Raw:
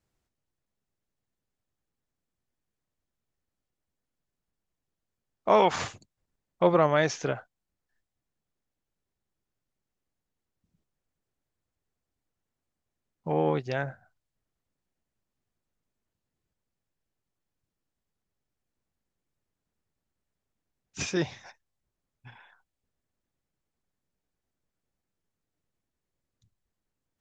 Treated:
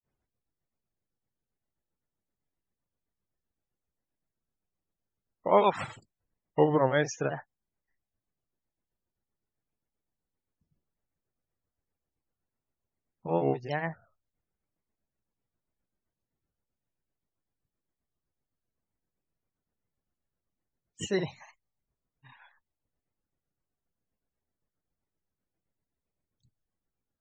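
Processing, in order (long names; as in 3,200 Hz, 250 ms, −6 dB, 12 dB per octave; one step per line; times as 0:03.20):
spectral peaks only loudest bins 64
granular cloud 214 ms, grains 7.7 per second, spray 35 ms, pitch spread up and down by 3 semitones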